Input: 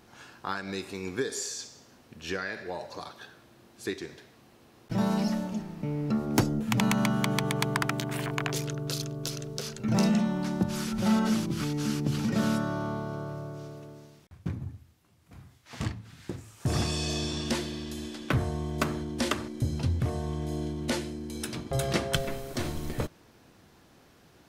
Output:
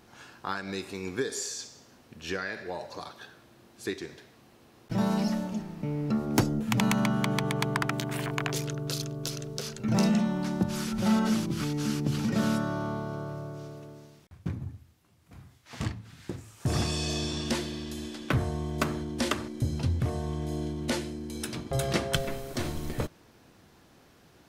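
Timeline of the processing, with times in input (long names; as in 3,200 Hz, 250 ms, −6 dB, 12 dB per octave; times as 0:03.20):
0:07.00–0:07.93: high-shelf EQ 4,400 Hz −4.5 dB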